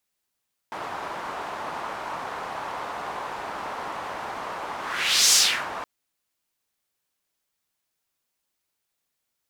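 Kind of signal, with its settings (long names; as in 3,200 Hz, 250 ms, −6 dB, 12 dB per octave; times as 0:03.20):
pass-by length 5.12 s, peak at 0:04.62, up 0.59 s, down 0.37 s, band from 960 Hz, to 6,200 Hz, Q 1.9, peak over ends 16.5 dB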